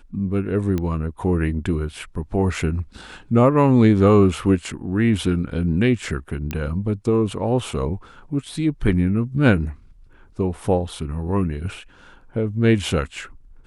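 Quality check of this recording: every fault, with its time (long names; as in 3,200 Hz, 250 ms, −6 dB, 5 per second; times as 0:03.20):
0:00.78: click −13 dBFS
0:06.51: click −12 dBFS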